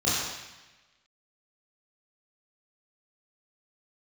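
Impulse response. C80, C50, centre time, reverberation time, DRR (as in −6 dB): 1.0 dB, −1.5 dB, 95 ms, 1.1 s, −10.0 dB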